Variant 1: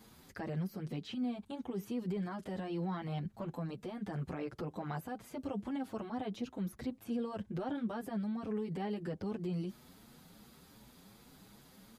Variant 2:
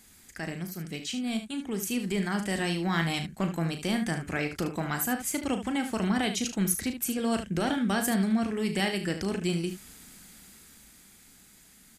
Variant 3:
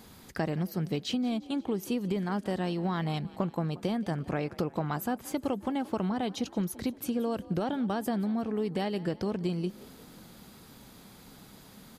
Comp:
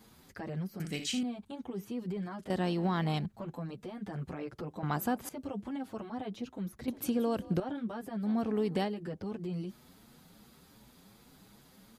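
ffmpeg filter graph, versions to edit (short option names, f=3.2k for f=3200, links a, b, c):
-filter_complex "[2:a]asplit=4[a][b][c][d];[0:a]asplit=6[e][f][g][h][i][j];[e]atrim=end=0.802[k];[1:a]atrim=start=0.798:end=1.232[l];[f]atrim=start=1.228:end=2.502[m];[a]atrim=start=2.498:end=3.262[n];[g]atrim=start=3.258:end=4.832[o];[b]atrim=start=4.828:end=5.292[p];[h]atrim=start=5.288:end=6.882[q];[c]atrim=start=6.878:end=7.602[r];[i]atrim=start=7.598:end=8.3[s];[d]atrim=start=8.2:end=8.93[t];[j]atrim=start=8.83[u];[k][l]acrossfade=d=0.004:c1=hsin:c2=hsin[v];[v][m]acrossfade=d=0.004:c1=hsin:c2=hsin[w];[w][n]acrossfade=d=0.004:c1=hsin:c2=hsin[x];[x][o]acrossfade=d=0.004:c1=hsin:c2=hsin[y];[y][p]acrossfade=d=0.004:c1=hsin:c2=hsin[z];[z][q]acrossfade=d=0.004:c1=hsin:c2=hsin[aa];[aa][r]acrossfade=d=0.004:c1=hsin:c2=hsin[ab];[ab][s]acrossfade=d=0.004:c1=hsin:c2=hsin[ac];[ac][t]acrossfade=d=0.1:c1=tri:c2=tri[ad];[ad][u]acrossfade=d=0.1:c1=tri:c2=tri"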